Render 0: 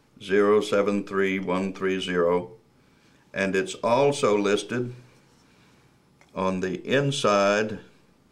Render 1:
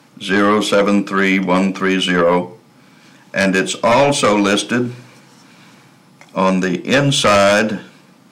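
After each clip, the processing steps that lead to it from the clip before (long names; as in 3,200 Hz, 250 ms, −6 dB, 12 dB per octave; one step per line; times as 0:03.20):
high-pass filter 140 Hz 24 dB per octave
parametric band 410 Hz −14 dB 0.22 octaves
sine wavefolder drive 8 dB, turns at −9 dBFS
level +2 dB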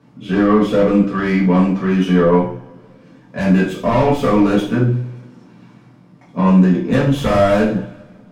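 phase distortion by the signal itself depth 0.052 ms
spectral tilt −4 dB per octave
coupled-rooms reverb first 0.42 s, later 2 s, from −25 dB, DRR −6.5 dB
level −11.5 dB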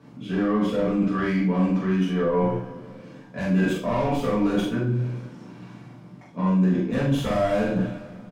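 reversed playback
downward compressor 5 to 1, threshold −23 dBFS, peak gain reduction 14.5 dB
reversed playback
double-tracking delay 43 ms −3 dB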